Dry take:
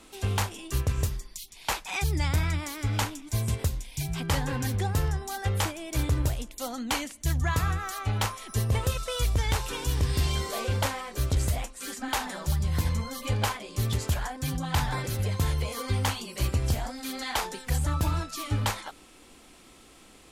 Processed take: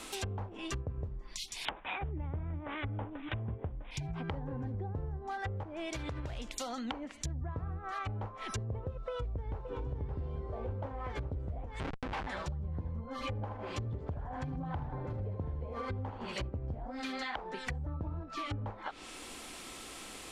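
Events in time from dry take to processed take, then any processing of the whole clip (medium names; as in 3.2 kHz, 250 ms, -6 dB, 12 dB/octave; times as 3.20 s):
1.65–3.91 s: careless resampling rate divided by 6×, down none, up filtered
5.63–6.88 s: compression 4:1, threshold -33 dBFS
8.94–9.59 s: echo throw 570 ms, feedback 70%, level -4.5 dB
11.80–12.27 s: Schmitt trigger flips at -29 dBFS
13.13–16.46 s: feedback delay 78 ms, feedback 43%, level -8 dB
whole clip: low-pass that closes with the level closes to 550 Hz, closed at -25.5 dBFS; bass shelf 420 Hz -7 dB; compression 5:1, threshold -45 dBFS; trim +8.5 dB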